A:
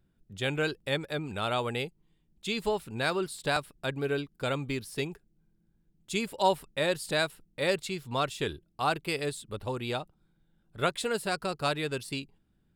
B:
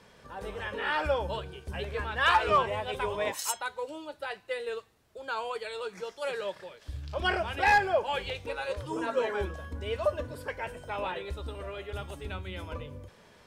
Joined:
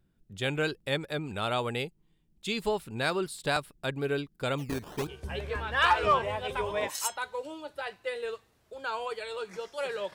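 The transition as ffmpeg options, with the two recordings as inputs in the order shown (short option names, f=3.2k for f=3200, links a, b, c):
-filter_complex "[0:a]asplit=3[a][b][c];[a]afade=t=out:st=4.57:d=0.02[d];[b]acrusher=samples=15:mix=1:aa=0.000001:lfo=1:lforange=15:lforate=1.3,afade=t=in:st=4.57:d=0.02,afade=t=out:st=5.07:d=0.02[e];[c]afade=t=in:st=5.07:d=0.02[f];[d][e][f]amix=inputs=3:normalize=0,apad=whole_dur=10.14,atrim=end=10.14,atrim=end=5.072[g];[1:a]atrim=start=1.508:end=6.58[h];[g][h]acrossfade=d=0.004:c1=hsin:c2=hsin"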